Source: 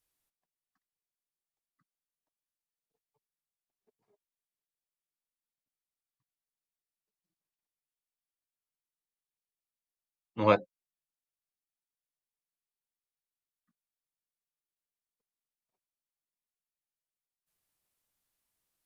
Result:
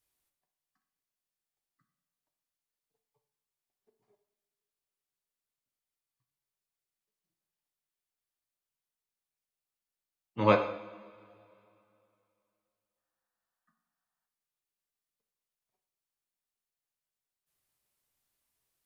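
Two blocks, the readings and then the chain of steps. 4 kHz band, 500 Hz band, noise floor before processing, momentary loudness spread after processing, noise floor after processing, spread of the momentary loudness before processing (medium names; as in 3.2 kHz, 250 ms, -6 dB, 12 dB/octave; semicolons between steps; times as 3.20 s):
+1.0 dB, +0.5 dB, under -85 dBFS, 19 LU, under -85 dBFS, 11 LU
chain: time-frequency box 12.97–14.28 s, 630–1900 Hz +12 dB; two-slope reverb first 0.74 s, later 2.8 s, from -18 dB, DRR 4.5 dB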